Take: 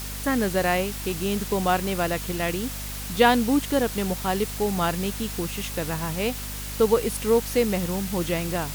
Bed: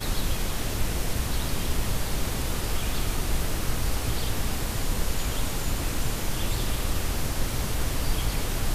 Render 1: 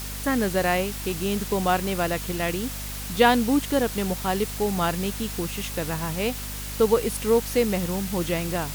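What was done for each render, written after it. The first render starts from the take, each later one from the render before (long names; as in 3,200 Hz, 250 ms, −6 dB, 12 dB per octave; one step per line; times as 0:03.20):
no processing that can be heard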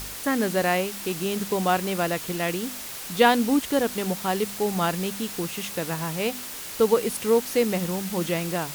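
hum removal 50 Hz, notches 5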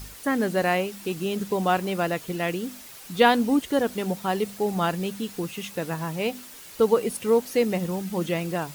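broadband denoise 9 dB, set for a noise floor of −36 dBFS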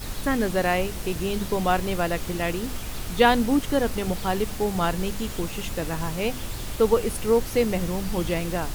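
mix in bed −6 dB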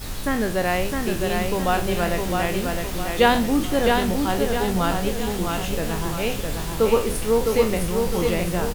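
peak hold with a decay on every bin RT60 0.35 s
repeating echo 660 ms, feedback 44%, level −4 dB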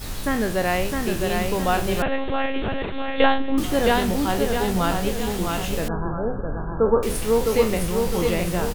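0:02.02–0:03.58: one-pitch LPC vocoder at 8 kHz 270 Hz
0:05.88–0:07.03: linear-phase brick-wall low-pass 1,700 Hz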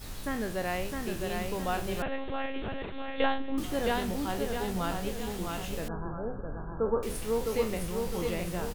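level −10 dB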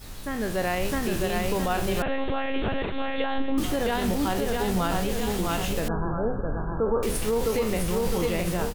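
automatic gain control gain up to 9 dB
brickwall limiter −16.5 dBFS, peak gain reduction 12 dB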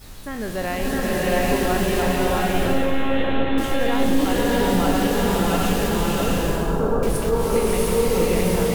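slow-attack reverb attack 730 ms, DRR −4.5 dB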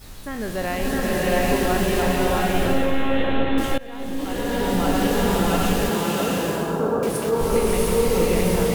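0:03.78–0:05.09: fade in, from −20.5 dB
0:05.89–0:07.41: high-pass filter 150 Hz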